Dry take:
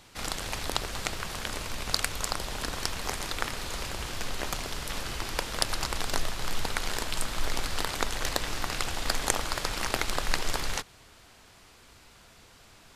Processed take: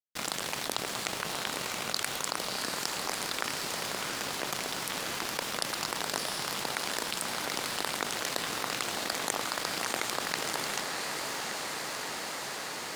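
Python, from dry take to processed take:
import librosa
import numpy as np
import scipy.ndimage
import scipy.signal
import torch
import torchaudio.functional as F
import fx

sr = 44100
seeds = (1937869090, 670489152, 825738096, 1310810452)

y = scipy.signal.sosfilt(scipy.signal.butter(4, 140.0, 'highpass', fs=sr, output='sos'), x)
y = np.sign(y) * np.maximum(np.abs(y) - 10.0 ** (-41.0 / 20.0), 0.0)
y = fx.echo_diffused(y, sr, ms=675, feedback_pct=64, wet_db=-9.0)
y = fx.env_flatten(y, sr, amount_pct=70)
y = y * 10.0 ** (-6.5 / 20.0)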